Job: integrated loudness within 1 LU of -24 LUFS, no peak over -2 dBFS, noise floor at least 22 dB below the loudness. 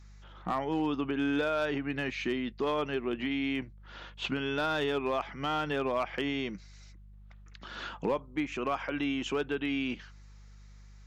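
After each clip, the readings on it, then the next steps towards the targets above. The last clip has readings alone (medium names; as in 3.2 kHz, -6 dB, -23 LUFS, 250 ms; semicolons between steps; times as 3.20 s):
clipped samples 0.3%; clipping level -22.0 dBFS; hum 50 Hz; highest harmonic 200 Hz; hum level -50 dBFS; loudness -32.5 LUFS; peak level -22.0 dBFS; loudness target -24.0 LUFS
-> clip repair -22 dBFS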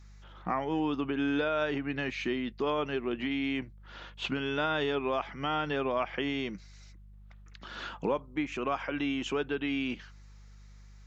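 clipped samples 0.0%; hum 50 Hz; highest harmonic 200 Hz; hum level -49 dBFS
-> de-hum 50 Hz, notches 4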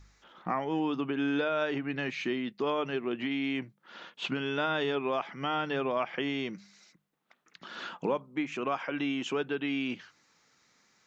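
hum not found; loudness -32.5 LUFS; peak level -16.5 dBFS; loudness target -24.0 LUFS
-> trim +8.5 dB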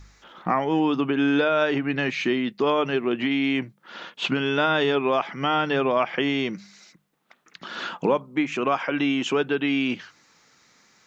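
loudness -24.0 LUFS; peak level -8.0 dBFS; noise floor -65 dBFS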